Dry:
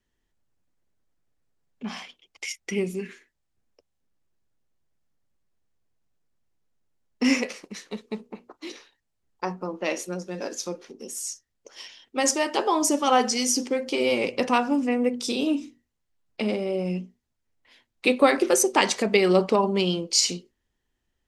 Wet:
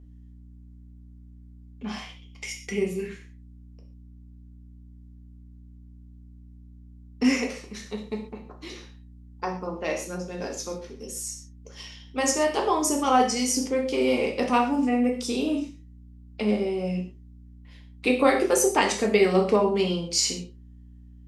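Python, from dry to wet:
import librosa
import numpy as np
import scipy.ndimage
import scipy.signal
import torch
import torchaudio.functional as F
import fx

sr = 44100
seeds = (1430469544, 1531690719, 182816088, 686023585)

y = fx.add_hum(x, sr, base_hz=60, snr_db=20)
y = fx.rev_gated(y, sr, seeds[0], gate_ms=160, shape='falling', drr_db=1.0)
y = fx.dynamic_eq(y, sr, hz=3800.0, q=1.0, threshold_db=-37.0, ratio=4.0, max_db=-4)
y = y * 10.0 ** (-2.5 / 20.0)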